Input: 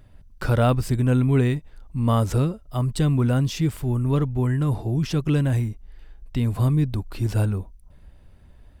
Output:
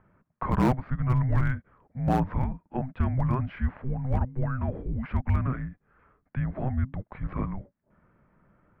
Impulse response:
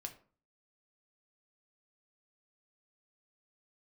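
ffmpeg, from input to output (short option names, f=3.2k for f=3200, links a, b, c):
-af "highpass=f=240:t=q:w=0.5412,highpass=f=240:t=q:w=1.307,lowpass=f=2.2k:t=q:w=0.5176,lowpass=f=2.2k:t=q:w=0.7071,lowpass=f=2.2k:t=q:w=1.932,afreqshift=-390,asoftclip=type=hard:threshold=-18dB,aemphasis=mode=production:type=50kf,volume=1.5dB"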